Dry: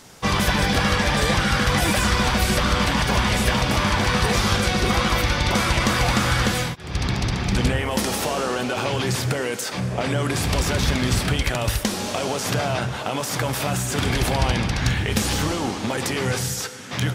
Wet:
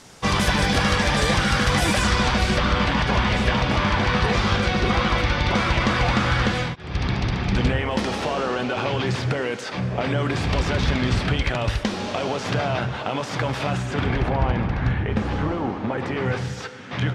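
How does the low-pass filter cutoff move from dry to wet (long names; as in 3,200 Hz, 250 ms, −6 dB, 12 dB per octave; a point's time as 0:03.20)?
0:01.85 9,700 Hz
0:02.73 3,800 Hz
0:13.71 3,800 Hz
0:14.33 1,600 Hz
0:15.89 1,600 Hz
0:16.61 3,000 Hz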